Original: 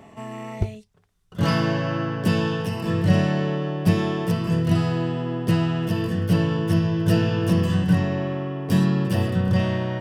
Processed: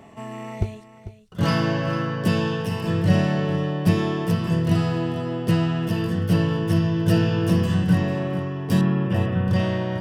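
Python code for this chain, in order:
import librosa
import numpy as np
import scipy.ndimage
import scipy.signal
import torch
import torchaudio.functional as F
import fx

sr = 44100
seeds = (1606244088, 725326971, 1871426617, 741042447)

y = fx.savgol(x, sr, points=25, at=(8.81, 9.48))
y = y + 10.0 ** (-13.5 / 20.0) * np.pad(y, (int(446 * sr / 1000.0), 0))[:len(y)]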